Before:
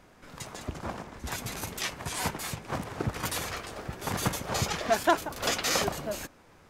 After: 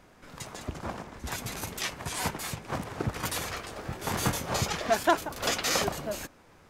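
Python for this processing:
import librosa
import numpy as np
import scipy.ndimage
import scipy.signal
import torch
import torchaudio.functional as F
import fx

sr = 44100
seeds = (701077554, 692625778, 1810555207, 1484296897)

y = fx.doubler(x, sr, ms=24.0, db=-4, at=(3.81, 4.56))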